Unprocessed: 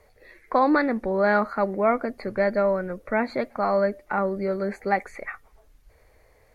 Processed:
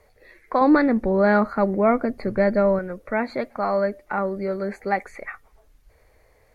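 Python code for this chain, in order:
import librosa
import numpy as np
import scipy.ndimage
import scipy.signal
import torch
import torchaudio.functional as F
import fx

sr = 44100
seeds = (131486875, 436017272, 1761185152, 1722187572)

y = fx.low_shelf(x, sr, hz=350.0, db=9.5, at=(0.61, 2.79))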